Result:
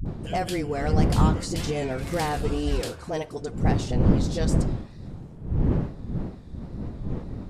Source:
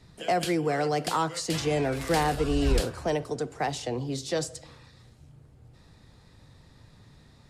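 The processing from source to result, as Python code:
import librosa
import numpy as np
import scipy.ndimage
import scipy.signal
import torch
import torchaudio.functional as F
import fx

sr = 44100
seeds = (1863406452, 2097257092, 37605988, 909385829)

y = fx.dmg_wind(x, sr, seeds[0], corner_hz=170.0, level_db=-24.0)
y = fx.wow_flutter(y, sr, seeds[1], rate_hz=2.1, depth_cents=60.0)
y = fx.dispersion(y, sr, late='highs', ms=58.0, hz=350.0)
y = F.gain(torch.from_numpy(y), -2.0).numpy()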